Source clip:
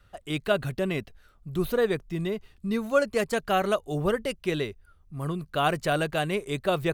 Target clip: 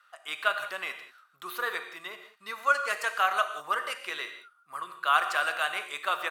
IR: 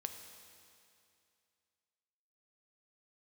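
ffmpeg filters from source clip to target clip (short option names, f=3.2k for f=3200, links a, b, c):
-filter_complex "[0:a]atempo=1.1,highpass=f=1.2k:t=q:w=2.6[a];[1:a]atrim=start_sample=2205,atrim=end_sample=6615,asetrate=32634,aresample=44100[b];[a][b]afir=irnorm=-1:irlink=0"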